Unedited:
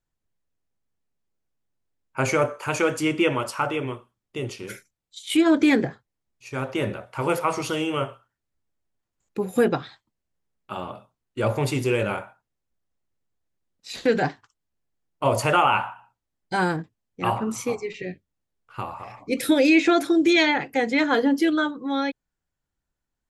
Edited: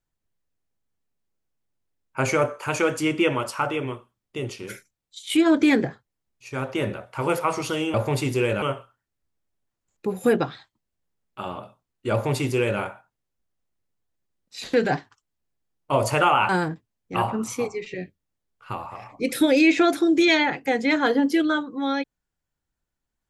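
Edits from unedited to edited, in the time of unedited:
0:11.44–0:12.12: duplicate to 0:07.94
0:15.81–0:16.57: remove

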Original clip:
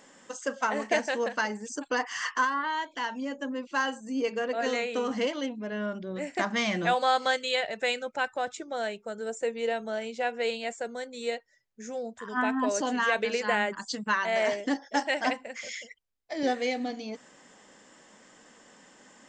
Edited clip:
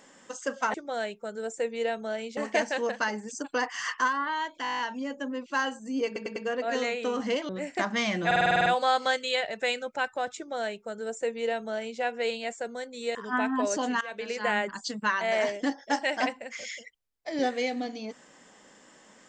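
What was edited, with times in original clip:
0:03.00: stutter 0.02 s, 9 plays
0:04.27: stutter 0.10 s, 4 plays
0:05.40–0:06.09: remove
0:06.86: stutter 0.05 s, 9 plays
0:08.57–0:10.20: duplicate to 0:00.74
0:11.35–0:12.19: remove
0:13.05–0:13.59: fade in, from −18.5 dB

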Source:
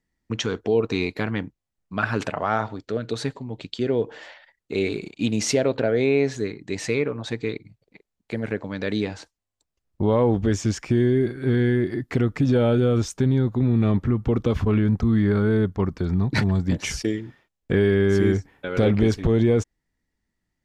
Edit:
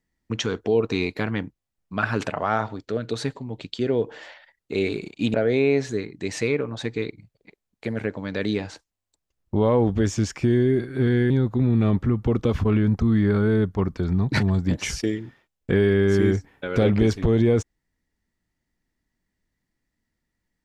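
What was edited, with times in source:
0:05.34–0:05.81: remove
0:11.77–0:13.31: remove

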